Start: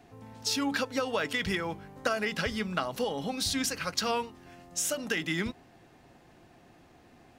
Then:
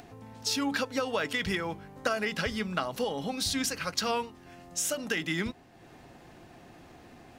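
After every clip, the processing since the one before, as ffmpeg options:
ffmpeg -i in.wav -af "acompressor=mode=upward:threshold=-44dB:ratio=2.5" out.wav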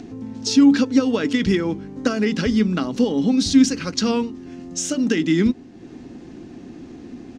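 ffmpeg -i in.wav -af "firequalizer=gain_entry='entry(140,0);entry(250,12);entry(620,-8);entry(6300,-1);entry(12000,-24)':delay=0.05:min_phase=1,volume=9dB" out.wav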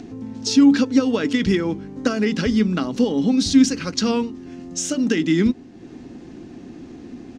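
ffmpeg -i in.wav -af anull out.wav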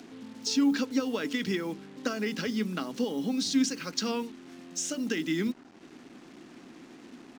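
ffmpeg -i in.wav -af "highpass=frequency=140:width=0.5412,highpass=frequency=140:width=1.3066,acrusher=bits=6:mix=0:aa=0.5,lowshelf=frequency=460:gain=-6.5,volume=-7dB" out.wav

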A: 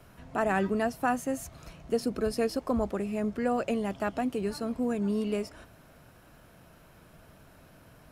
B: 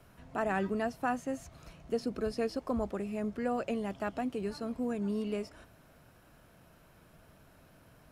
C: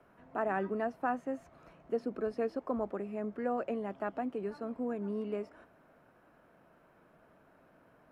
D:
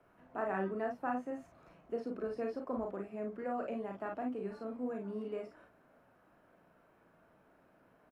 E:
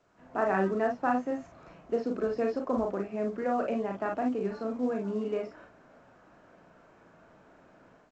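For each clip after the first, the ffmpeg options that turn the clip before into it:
ffmpeg -i in.wav -filter_complex "[0:a]acrossover=split=6800[link_01][link_02];[link_02]acompressor=threshold=-57dB:ratio=4:attack=1:release=60[link_03];[link_01][link_03]amix=inputs=2:normalize=0,volume=-4.5dB" out.wav
ffmpeg -i in.wav -filter_complex "[0:a]acrossover=split=200 2100:gain=0.178 1 0.141[link_01][link_02][link_03];[link_01][link_02][link_03]amix=inputs=3:normalize=0" out.wav
ffmpeg -i in.wav -af "aecho=1:1:36|52:0.596|0.501,volume=-5dB" out.wav
ffmpeg -i in.wav -af "dynaudnorm=framelen=140:gausssize=3:maxgain=12dB,volume=-3.5dB" -ar 16000 -c:a pcm_mulaw out.wav

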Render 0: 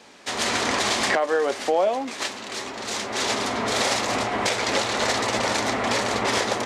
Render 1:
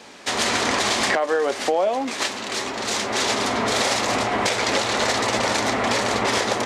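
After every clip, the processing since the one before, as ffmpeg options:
ffmpeg -i in.wav -af "acompressor=threshold=-26dB:ratio=2,volume=5.5dB" out.wav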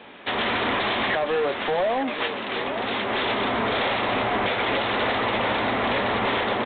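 ffmpeg -i in.wav -af "aresample=8000,asoftclip=type=hard:threshold=-20dB,aresample=44100,aecho=1:1:878:0.282" out.wav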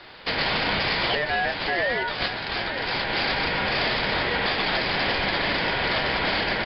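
ffmpeg -i in.wav -af "crystalizer=i=2.5:c=0,aeval=exprs='val(0)*sin(2*PI*1200*n/s)':channel_layout=same,volume=1dB" out.wav

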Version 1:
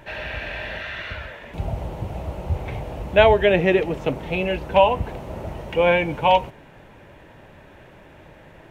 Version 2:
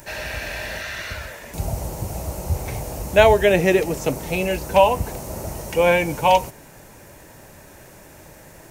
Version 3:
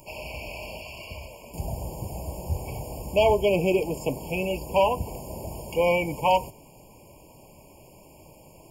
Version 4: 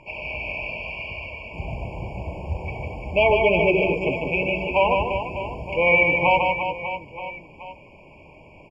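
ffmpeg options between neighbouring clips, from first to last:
ffmpeg -i in.wav -af "aexciter=amount=10.1:drive=4.6:freq=4800,volume=1dB" out.wav
ffmpeg -i in.wav -af "bandreject=frequency=50:width_type=h:width=6,bandreject=frequency=100:width_type=h:width=6,volume=9.5dB,asoftclip=hard,volume=-9.5dB,afftfilt=real='re*eq(mod(floor(b*sr/1024/1100),2),0)':imag='im*eq(mod(floor(b*sr/1024/1100),2),0)':win_size=1024:overlap=0.75,volume=-5dB" out.wav
ffmpeg -i in.wav -filter_complex "[0:a]lowpass=frequency=2200:width_type=q:width=4.8,asplit=2[link_01][link_02];[link_02]aecho=0:1:150|345|598.5|928|1356:0.631|0.398|0.251|0.158|0.1[link_03];[link_01][link_03]amix=inputs=2:normalize=0" out.wav

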